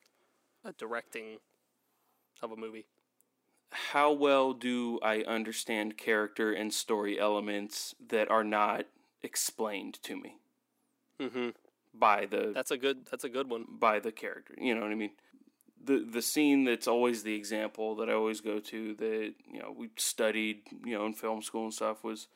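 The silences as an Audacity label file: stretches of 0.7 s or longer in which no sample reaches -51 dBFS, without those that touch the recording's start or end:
1.370000	2.360000	silence
10.360000	11.200000	silence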